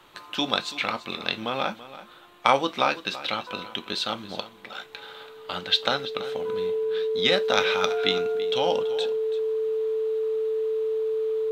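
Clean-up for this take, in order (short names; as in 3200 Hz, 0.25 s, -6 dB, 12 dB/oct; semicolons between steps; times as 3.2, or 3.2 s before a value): notch 440 Hz, Q 30; inverse comb 0.333 s -15.5 dB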